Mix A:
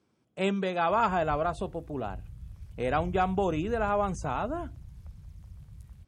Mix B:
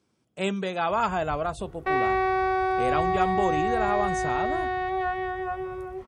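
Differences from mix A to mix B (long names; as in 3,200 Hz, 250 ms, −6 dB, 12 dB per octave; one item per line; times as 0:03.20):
speech: add high-shelf EQ 4,100 Hz +7.5 dB
second sound: unmuted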